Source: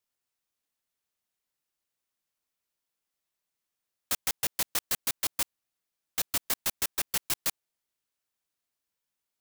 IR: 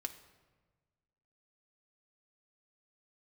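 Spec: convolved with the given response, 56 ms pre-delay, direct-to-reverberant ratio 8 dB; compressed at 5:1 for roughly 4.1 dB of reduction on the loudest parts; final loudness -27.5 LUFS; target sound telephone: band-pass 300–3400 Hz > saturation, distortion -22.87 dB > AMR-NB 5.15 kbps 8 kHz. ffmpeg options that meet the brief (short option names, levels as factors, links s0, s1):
-filter_complex "[0:a]acompressor=threshold=0.0355:ratio=5,asplit=2[s0][s1];[1:a]atrim=start_sample=2205,adelay=56[s2];[s1][s2]afir=irnorm=-1:irlink=0,volume=0.473[s3];[s0][s3]amix=inputs=2:normalize=0,highpass=300,lowpass=3400,asoftclip=threshold=0.0398,volume=16.8" -ar 8000 -c:a libopencore_amrnb -b:a 5150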